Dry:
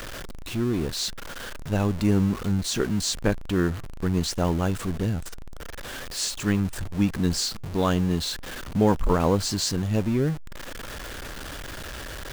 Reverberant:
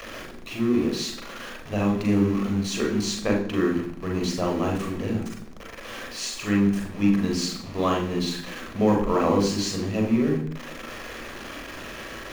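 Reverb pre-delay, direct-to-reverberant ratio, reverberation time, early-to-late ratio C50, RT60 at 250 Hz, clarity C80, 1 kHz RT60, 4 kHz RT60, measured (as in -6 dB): 36 ms, 0.0 dB, 0.65 s, 6.5 dB, 0.90 s, 10.5 dB, 0.65 s, 0.80 s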